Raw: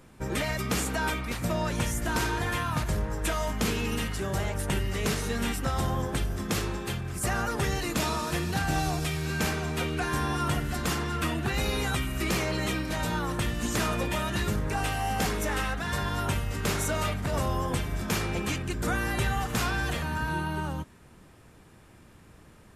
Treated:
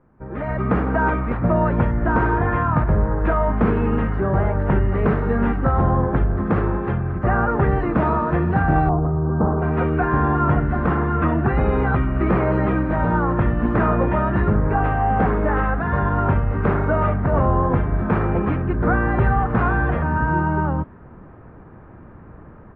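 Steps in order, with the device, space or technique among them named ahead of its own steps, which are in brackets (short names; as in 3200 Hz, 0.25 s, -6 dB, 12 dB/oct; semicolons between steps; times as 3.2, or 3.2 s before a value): 8.89–9.62 steep low-pass 1200 Hz 36 dB/oct; action camera in a waterproof case (LPF 1500 Hz 24 dB/oct; AGC gain up to 16 dB; gain -4 dB; AAC 48 kbps 16000 Hz)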